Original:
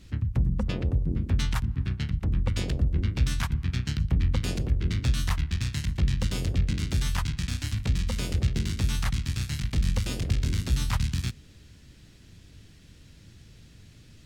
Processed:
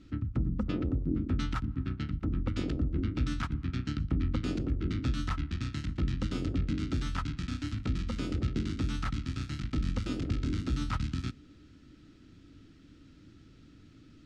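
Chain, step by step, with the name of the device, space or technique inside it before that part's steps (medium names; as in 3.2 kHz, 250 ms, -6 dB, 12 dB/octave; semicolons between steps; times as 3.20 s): inside a cardboard box (low-pass 5.4 kHz 12 dB/octave; small resonant body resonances 290/1300 Hz, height 16 dB, ringing for 40 ms); trim -7.5 dB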